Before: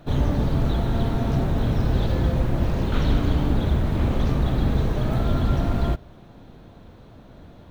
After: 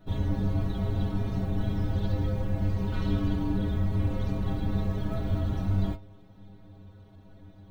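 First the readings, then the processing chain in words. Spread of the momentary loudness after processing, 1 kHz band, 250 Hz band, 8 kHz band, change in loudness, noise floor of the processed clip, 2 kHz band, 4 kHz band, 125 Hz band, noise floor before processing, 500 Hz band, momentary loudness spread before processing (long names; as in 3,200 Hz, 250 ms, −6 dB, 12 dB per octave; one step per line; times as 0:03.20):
2 LU, −10.0 dB, −5.5 dB, can't be measured, −6.0 dB, −53 dBFS, −9.0 dB, −9.5 dB, −5.5 dB, −47 dBFS, −8.5 dB, 2 LU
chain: low-shelf EQ 270 Hz +7 dB
stiff-string resonator 96 Hz, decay 0.34 s, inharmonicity 0.008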